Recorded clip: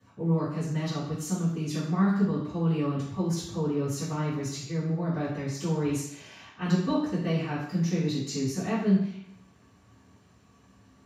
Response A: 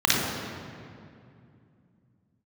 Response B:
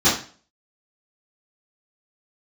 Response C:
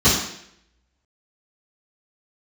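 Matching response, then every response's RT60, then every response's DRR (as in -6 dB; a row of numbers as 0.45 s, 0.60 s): C; 2.5 s, 0.40 s, 0.70 s; -4.0 dB, -14.0 dB, -13.0 dB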